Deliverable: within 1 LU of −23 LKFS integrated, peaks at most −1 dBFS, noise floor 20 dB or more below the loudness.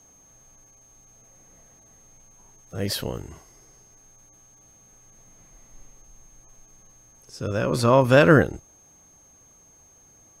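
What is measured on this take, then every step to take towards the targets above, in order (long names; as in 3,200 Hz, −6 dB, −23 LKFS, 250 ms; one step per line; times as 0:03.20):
interfering tone 6,400 Hz; level of the tone −53 dBFS; integrated loudness −20.5 LKFS; sample peak −2.5 dBFS; target loudness −23.0 LKFS
→ notch filter 6,400 Hz, Q 30
level −2.5 dB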